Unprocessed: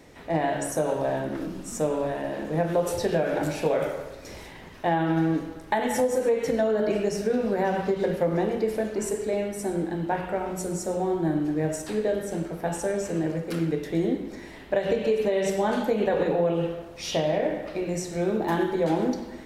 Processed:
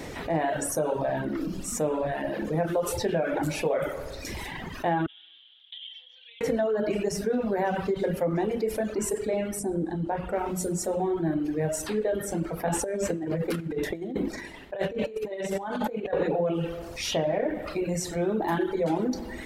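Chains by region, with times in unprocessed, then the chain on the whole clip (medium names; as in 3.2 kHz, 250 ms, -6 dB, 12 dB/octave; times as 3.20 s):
5.06–6.41 s: Butterworth band-pass 3.3 kHz, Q 7.3 + distance through air 320 m
9.59–10.33 s: low-pass 11 kHz 24 dB/octave + peaking EQ 2.3 kHz -10 dB 2.9 oct
12.67–16.13 s: expander -34 dBFS + compressor with a negative ratio -30 dBFS, ratio -0.5
whole clip: reverb removal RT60 1.5 s; dynamic bell 5.1 kHz, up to -4 dB, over -53 dBFS, Q 0.94; level flattener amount 50%; trim -2.5 dB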